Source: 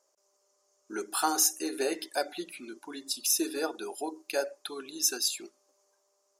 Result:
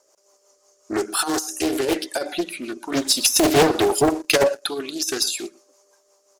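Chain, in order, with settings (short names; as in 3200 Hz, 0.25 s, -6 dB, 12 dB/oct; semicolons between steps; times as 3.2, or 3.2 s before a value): negative-ratio compressor -30 dBFS, ratio -0.5; on a send: echo 0.118 s -22 dB; on the sum: rotary speaker horn 5.5 Hz; in parallel at -6 dB: one-sided clip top -30 dBFS; 2.92–4.62 on the sum: sample leveller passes 2; Doppler distortion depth 0.67 ms; gain +9 dB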